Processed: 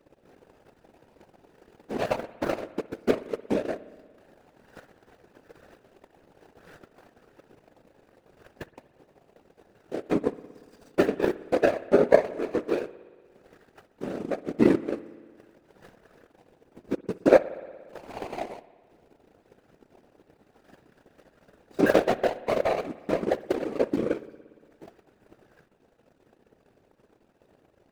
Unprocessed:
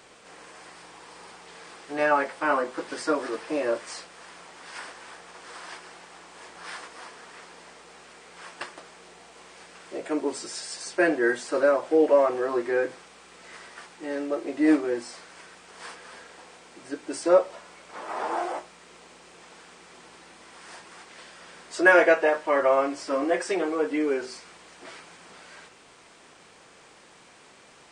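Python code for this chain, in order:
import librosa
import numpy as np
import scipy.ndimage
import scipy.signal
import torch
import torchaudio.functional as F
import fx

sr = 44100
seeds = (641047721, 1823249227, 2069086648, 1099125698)

y = scipy.ndimage.median_filter(x, 41, mode='constant')
y = fx.whisperise(y, sr, seeds[0])
y = fx.transient(y, sr, attack_db=10, sustain_db=-10)
y = fx.rev_spring(y, sr, rt60_s=1.7, pass_ms=(58,), chirp_ms=50, drr_db=16.5)
y = y * librosa.db_to_amplitude(-4.0)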